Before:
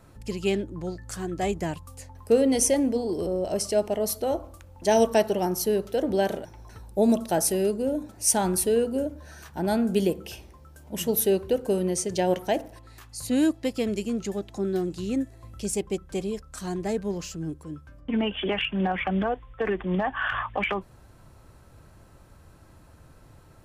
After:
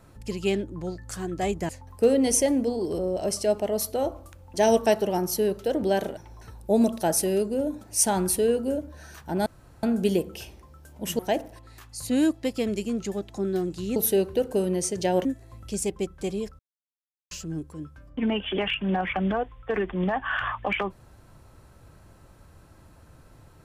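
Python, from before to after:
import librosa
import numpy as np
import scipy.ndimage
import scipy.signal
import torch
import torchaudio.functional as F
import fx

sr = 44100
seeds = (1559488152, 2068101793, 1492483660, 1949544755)

y = fx.edit(x, sr, fx.cut(start_s=1.69, length_s=0.28),
    fx.insert_room_tone(at_s=9.74, length_s=0.37),
    fx.move(start_s=11.1, length_s=1.29, to_s=15.16),
    fx.silence(start_s=16.5, length_s=0.72), tone=tone)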